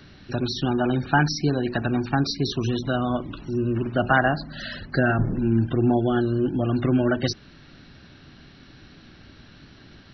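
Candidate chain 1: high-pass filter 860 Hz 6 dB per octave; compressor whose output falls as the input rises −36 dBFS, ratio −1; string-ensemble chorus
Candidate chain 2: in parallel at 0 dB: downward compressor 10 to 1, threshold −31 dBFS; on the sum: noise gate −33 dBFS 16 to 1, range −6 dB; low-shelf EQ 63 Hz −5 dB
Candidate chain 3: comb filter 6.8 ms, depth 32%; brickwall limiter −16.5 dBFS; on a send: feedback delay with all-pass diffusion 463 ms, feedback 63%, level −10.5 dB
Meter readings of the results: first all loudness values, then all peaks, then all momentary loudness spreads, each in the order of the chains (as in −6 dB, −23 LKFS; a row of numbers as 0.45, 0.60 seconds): −38.5, −22.0, −26.5 LKFS; −22.5, −5.5, −13.5 dBFS; 14, 8, 18 LU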